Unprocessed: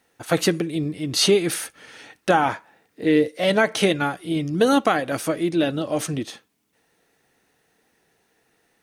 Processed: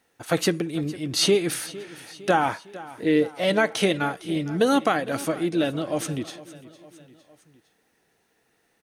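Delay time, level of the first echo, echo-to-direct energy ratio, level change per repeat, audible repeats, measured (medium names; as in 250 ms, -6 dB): 457 ms, -18.0 dB, -16.5 dB, -5.0 dB, 3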